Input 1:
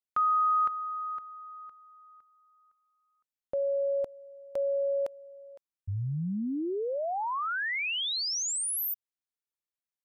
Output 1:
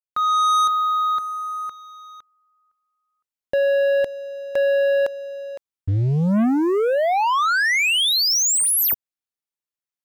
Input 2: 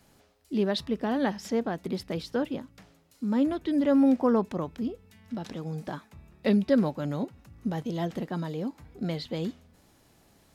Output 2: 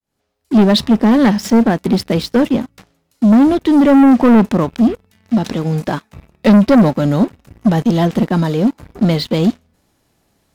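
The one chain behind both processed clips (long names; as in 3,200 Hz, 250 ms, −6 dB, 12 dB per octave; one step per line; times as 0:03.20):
fade in at the beginning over 0.58 s
dynamic equaliser 220 Hz, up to +8 dB, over −42 dBFS, Q 3.7
leveller curve on the samples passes 3
level +5.5 dB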